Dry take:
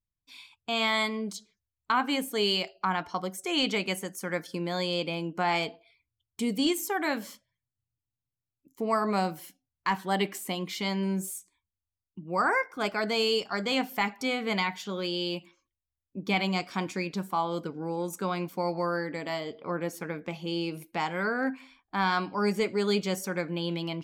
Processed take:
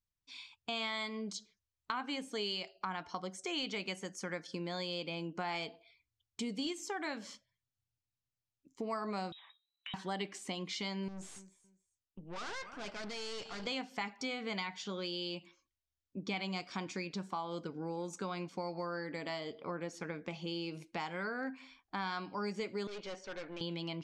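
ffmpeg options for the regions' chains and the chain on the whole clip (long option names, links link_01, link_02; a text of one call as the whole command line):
ffmpeg -i in.wav -filter_complex "[0:a]asettb=1/sr,asplit=3[link_01][link_02][link_03];[link_01]atrim=end=9.324[link_04];[link_02]atrim=start=9.32:end=9.94,asetpts=PTS-STARTPTS,afade=type=in:duration=0.004:curve=qsin,afade=type=out:start_time=0.616:duration=0.004:curve=qsin,lowpass=frequency=3400:width_type=q:width=0.5098,lowpass=frequency=3400:width_type=q:width=0.6013,lowpass=frequency=3400:width_type=q:width=0.9,lowpass=frequency=3400:width_type=q:width=2.563,afreqshift=-4000,highpass=780,acompressor=threshold=-43dB:ratio=5:attack=3.2:release=140:knee=1:detection=peak[link_05];[link_03]atrim=start=9.936[link_06];[link_04][link_05]acrossfade=duration=0.004:curve1=hsin:curve2=qsin[link_07];[link_07][link_06]acrossfade=duration=0.004:curve1=qsin:curve2=hsin,asettb=1/sr,asplit=3[link_08][link_09][link_10];[link_08]atrim=end=11.084[link_11];[link_09]atrim=start=11.08:end=13.67,asetpts=PTS-STARTPTS,afade=type=in:duration=0.004:curve=qsin,afade=type=out:start_time=2.586:duration=0.004:curve=qsin,aecho=1:1:280|560:0.0944|0.0217,atrim=end_sample=114219,deesser=0.6,aeval=exprs='(tanh(79.4*val(0)+0.7)-tanh(0.7))/79.4':channel_layout=same[link_12];[link_10]atrim=start=13.666[link_13];[link_11][link_12]acrossfade=duration=0.004:curve1=hsin:curve2=qsin[link_14];[link_14][link_13]acrossfade=duration=0.004:curve1=qsin:curve2=hsin,asettb=1/sr,asplit=3[link_15][link_16][link_17];[link_15]atrim=end=22.874[link_18];[link_16]atrim=start=22.87:end=23.61,asetpts=PTS-STARTPTS,afade=type=in:duration=0.004:curve=qsin,afade=type=out:start_time=0.736:duration=0.004:curve=qsin,highpass=380,lowpass=3100,aeval=exprs='(tanh(63.1*val(0)+0.5)-tanh(0.5))/63.1':channel_layout=same[link_19];[link_17]atrim=start=23.606[link_20];[link_18][link_19]acrossfade=duration=0.004:curve1=hsin:curve2=qsin[link_21];[link_21][link_20]acrossfade=duration=0.004:curve1=qsin:curve2=hsin,lowpass=frequency=6600:width=0.5412,lowpass=frequency=6600:width=1.3066,highshelf=frequency=4600:gain=7.5,acompressor=threshold=-34dB:ratio=3,volume=-3.5dB" out.wav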